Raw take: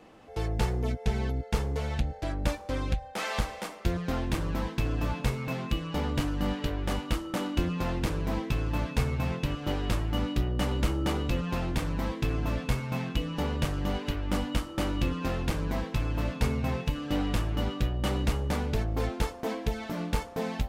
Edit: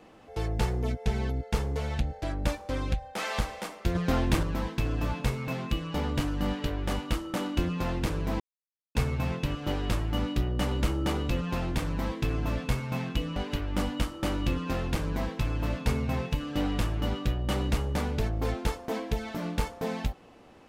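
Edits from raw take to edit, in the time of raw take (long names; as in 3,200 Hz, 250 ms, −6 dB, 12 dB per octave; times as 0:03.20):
0:03.95–0:04.43: clip gain +4.5 dB
0:08.40–0:08.95: silence
0:13.36–0:13.91: remove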